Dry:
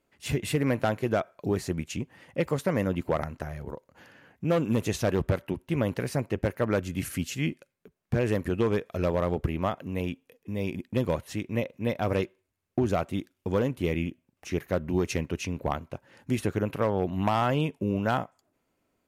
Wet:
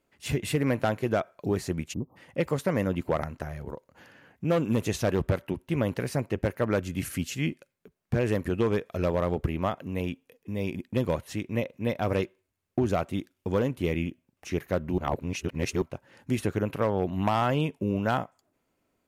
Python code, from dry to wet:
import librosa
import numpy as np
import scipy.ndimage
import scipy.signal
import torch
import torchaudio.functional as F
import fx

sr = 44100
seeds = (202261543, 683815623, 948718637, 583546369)

y = fx.spec_erase(x, sr, start_s=1.93, length_s=0.23, low_hz=1300.0, high_hz=12000.0)
y = fx.edit(y, sr, fx.reverse_span(start_s=14.98, length_s=0.84), tone=tone)